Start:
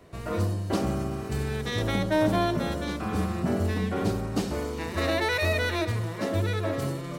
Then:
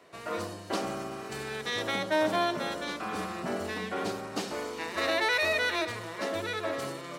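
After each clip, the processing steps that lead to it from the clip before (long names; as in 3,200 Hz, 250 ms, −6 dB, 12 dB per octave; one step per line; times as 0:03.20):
meter weighting curve A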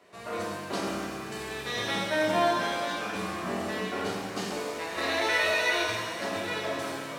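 reverb with rising layers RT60 1.4 s, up +7 semitones, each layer −8 dB, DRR −2 dB
level −3 dB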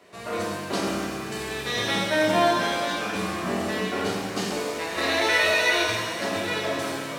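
parametric band 1,000 Hz −2.5 dB 2 octaves
level +6 dB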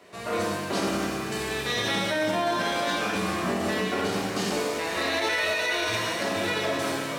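brickwall limiter −19 dBFS, peak gain reduction 10 dB
level +1.5 dB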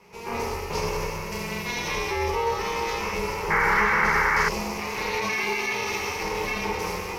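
ring modulation 230 Hz
EQ curve with evenly spaced ripples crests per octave 0.81, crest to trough 12 dB
sound drawn into the spectrogram noise, 0:03.50–0:04.49, 790–2,300 Hz −22 dBFS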